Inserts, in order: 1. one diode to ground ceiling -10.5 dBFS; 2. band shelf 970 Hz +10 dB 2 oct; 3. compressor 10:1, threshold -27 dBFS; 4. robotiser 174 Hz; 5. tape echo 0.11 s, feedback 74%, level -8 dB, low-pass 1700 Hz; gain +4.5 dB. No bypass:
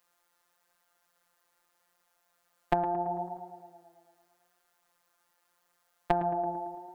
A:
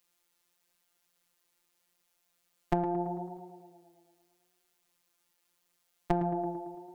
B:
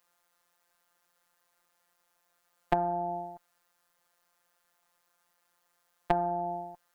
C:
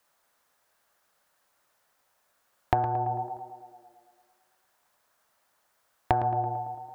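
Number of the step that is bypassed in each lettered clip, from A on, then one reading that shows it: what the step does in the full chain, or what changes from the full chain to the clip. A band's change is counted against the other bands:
2, 125 Hz band +8.0 dB; 5, echo-to-direct -14.0 dB to none; 4, 125 Hz band +8.5 dB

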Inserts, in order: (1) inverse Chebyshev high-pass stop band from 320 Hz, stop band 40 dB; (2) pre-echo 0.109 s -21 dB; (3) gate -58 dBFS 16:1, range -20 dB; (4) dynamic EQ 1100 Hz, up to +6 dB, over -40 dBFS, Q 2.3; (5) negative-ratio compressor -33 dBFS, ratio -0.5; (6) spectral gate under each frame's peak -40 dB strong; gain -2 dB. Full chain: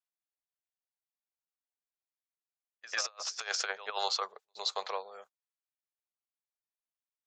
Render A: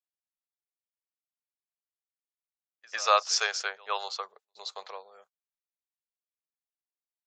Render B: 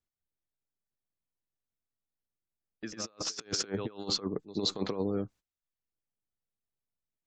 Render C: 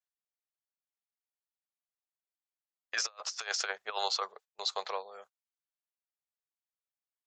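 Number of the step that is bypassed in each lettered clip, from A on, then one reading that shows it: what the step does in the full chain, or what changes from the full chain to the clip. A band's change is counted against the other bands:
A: 5, crest factor change +4.0 dB; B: 1, 2 kHz band -11.0 dB; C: 2, momentary loudness spread change -4 LU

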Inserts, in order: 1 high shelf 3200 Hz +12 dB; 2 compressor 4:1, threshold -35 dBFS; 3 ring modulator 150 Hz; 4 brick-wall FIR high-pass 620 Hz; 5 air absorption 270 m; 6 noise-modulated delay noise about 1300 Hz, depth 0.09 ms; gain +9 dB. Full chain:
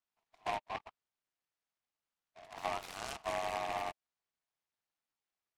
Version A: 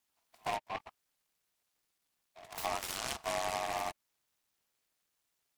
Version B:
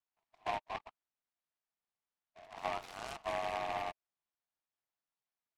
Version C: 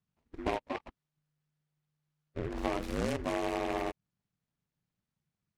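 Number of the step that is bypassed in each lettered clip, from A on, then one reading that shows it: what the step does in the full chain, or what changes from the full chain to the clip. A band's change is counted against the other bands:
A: 5, 8 kHz band +7.0 dB; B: 1, 8 kHz band -5.5 dB; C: 4, 250 Hz band +16.5 dB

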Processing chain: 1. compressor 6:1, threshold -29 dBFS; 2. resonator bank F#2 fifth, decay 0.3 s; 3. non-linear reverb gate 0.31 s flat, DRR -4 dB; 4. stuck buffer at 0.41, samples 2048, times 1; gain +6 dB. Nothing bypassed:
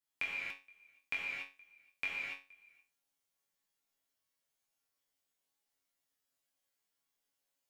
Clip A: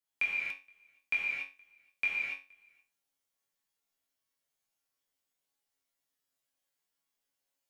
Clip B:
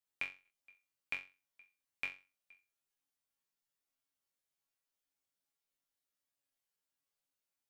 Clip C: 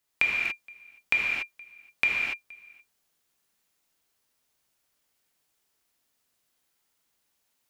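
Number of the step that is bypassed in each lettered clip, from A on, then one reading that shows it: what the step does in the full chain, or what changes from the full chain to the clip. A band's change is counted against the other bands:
1, mean gain reduction 5.0 dB; 3, crest factor change +5.5 dB; 2, 2 kHz band +2.0 dB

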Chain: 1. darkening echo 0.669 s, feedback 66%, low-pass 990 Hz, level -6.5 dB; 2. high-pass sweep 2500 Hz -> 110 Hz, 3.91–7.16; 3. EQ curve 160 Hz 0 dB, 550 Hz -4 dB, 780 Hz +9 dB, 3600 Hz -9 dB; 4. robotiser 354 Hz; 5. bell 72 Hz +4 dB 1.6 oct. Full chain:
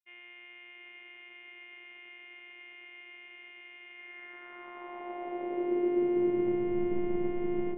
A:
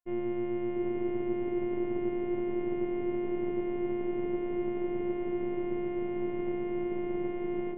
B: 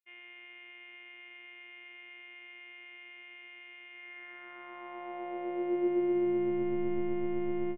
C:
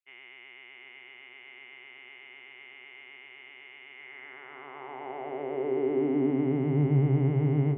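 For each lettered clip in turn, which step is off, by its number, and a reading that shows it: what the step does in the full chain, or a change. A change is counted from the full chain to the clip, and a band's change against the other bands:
2, 2 kHz band -5.5 dB; 1, momentary loudness spread change -1 LU; 4, 125 Hz band +20.5 dB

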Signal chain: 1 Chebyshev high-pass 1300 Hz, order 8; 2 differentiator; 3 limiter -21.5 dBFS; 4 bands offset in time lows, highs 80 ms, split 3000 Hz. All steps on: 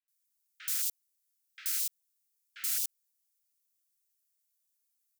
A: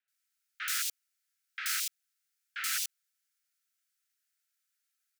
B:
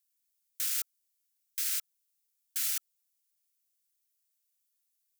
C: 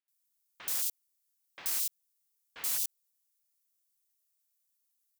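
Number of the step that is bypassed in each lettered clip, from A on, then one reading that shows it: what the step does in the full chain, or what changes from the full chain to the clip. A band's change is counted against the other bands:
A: 2, 8 kHz band -11.5 dB; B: 4, echo-to-direct -13.5 dB to none; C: 1, 1 kHz band +7.0 dB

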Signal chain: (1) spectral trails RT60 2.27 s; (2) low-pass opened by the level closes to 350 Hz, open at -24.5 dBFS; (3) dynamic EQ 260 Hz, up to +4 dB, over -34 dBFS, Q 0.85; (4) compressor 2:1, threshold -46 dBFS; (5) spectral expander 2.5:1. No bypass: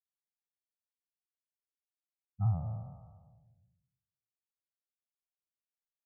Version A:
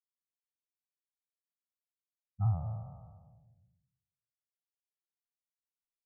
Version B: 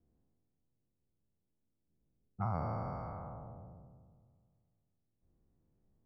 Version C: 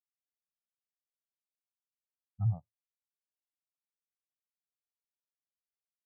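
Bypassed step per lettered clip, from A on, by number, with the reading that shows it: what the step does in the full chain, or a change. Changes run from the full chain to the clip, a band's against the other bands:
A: 3, 250 Hz band -3.0 dB; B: 5, 125 Hz band -16.0 dB; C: 1, 125 Hz band +5.5 dB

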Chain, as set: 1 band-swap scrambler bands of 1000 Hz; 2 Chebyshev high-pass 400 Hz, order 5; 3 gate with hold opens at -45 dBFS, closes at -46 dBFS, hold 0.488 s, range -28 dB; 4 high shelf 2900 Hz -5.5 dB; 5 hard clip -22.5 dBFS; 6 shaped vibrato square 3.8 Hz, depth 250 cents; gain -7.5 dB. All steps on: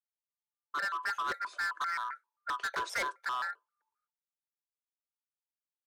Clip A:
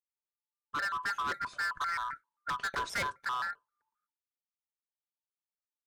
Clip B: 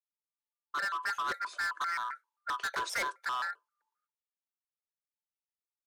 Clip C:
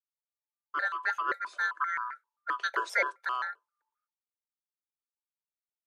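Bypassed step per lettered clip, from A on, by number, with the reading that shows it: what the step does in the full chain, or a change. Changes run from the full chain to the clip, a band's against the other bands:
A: 2, 250 Hz band +3.5 dB; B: 4, 8 kHz band +2.5 dB; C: 5, distortion -8 dB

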